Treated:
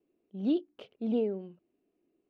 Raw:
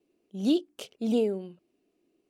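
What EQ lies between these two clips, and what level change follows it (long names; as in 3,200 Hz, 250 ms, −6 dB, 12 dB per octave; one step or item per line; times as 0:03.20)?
high-frequency loss of the air 380 metres
−3.0 dB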